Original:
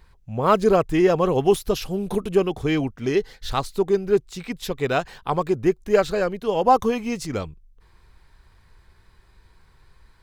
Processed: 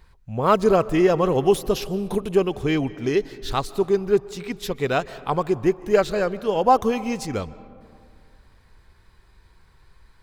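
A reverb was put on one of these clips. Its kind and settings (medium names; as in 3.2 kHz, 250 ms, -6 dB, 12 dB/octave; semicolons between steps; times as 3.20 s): algorithmic reverb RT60 2.3 s, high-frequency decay 0.4×, pre-delay 110 ms, DRR 18 dB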